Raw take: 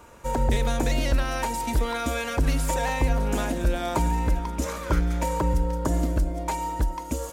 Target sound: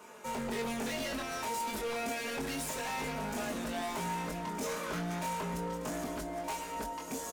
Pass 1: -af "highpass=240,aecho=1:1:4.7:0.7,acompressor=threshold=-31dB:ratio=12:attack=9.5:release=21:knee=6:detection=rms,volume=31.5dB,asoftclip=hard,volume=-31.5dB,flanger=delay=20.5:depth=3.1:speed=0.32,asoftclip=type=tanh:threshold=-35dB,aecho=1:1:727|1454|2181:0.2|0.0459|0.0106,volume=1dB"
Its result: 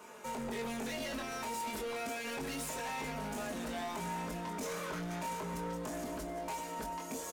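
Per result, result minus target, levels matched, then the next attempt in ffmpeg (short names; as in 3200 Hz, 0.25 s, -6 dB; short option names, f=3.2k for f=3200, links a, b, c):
compressor: peak gain reduction +11.5 dB; echo 0.496 s early; soft clip: distortion +10 dB
-af "highpass=240,aecho=1:1:4.7:0.7,volume=31.5dB,asoftclip=hard,volume=-31.5dB,flanger=delay=20.5:depth=3.1:speed=0.32,asoftclip=type=tanh:threshold=-35dB,aecho=1:1:727|1454|2181:0.2|0.0459|0.0106,volume=1dB"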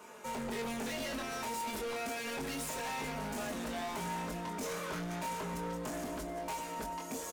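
echo 0.496 s early; soft clip: distortion +10 dB
-af "highpass=240,aecho=1:1:4.7:0.7,volume=31.5dB,asoftclip=hard,volume=-31.5dB,flanger=delay=20.5:depth=3.1:speed=0.32,asoftclip=type=tanh:threshold=-35dB,aecho=1:1:1223|2446|3669:0.2|0.0459|0.0106,volume=1dB"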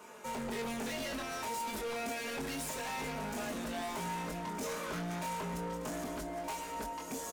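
soft clip: distortion +10 dB
-af "highpass=240,aecho=1:1:4.7:0.7,volume=31.5dB,asoftclip=hard,volume=-31.5dB,flanger=delay=20.5:depth=3.1:speed=0.32,asoftclip=type=tanh:threshold=-28.5dB,aecho=1:1:1223|2446|3669:0.2|0.0459|0.0106,volume=1dB"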